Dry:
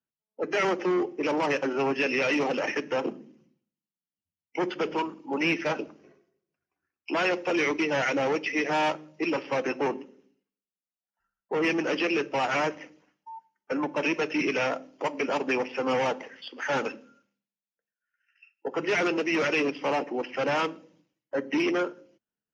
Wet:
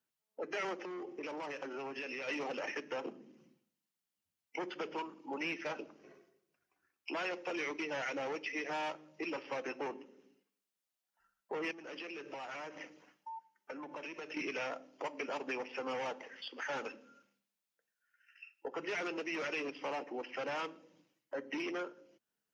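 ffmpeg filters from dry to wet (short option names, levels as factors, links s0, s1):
-filter_complex "[0:a]asplit=3[s0][s1][s2];[s0]afade=t=out:st=0.82:d=0.02[s3];[s1]acompressor=threshold=0.0282:ratio=6:attack=3.2:release=140:knee=1:detection=peak,afade=t=in:st=0.82:d=0.02,afade=t=out:st=2.27:d=0.02[s4];[s2]afade=t=in:st=2.27:d=0.02[s5];[s3][s4][s5]amix=inputs=3:normalize=0,asettb=1/sr,asplit=3[s6][s7][s8];[s6]atrim=end=11.714[s9];[s7]atrim=start=11.71:end=14.37,asetpts=PTS-STARTPTS,afade=t=in:d=0.004:c=qsin,afade=t=out:st=2.656:d=0.004:c=qsin,acompressor=threshold=0.0141:ratio=6:attack=3.2:release=140:knee=1:detection=peak[s10];[s8]atrim=start=14.366[s11];[s9][s10]acrossfade=d=0.004:c1=hsin:c2=qsin[s12];[s12][s11]acrossfade=d=0.004:c1=qsin:c2=hsin,lowshelf=f=250:g=-9,acompressor=threshold=0.00178:ratio=2,volume=1.78"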